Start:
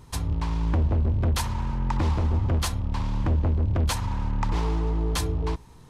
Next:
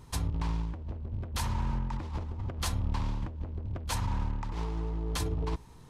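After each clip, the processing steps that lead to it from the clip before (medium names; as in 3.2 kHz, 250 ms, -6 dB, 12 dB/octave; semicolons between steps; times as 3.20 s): compressor with a negative ratio -26 dBFS, ratio -0.5; trim -5.5 dB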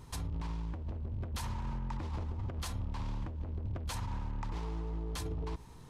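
peak limiter -30 dBFS, peak gain reduction 10 dB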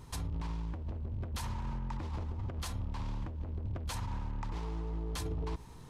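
gain riding 2 s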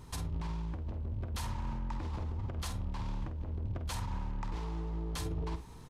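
doubling 49 ms -9.5 dB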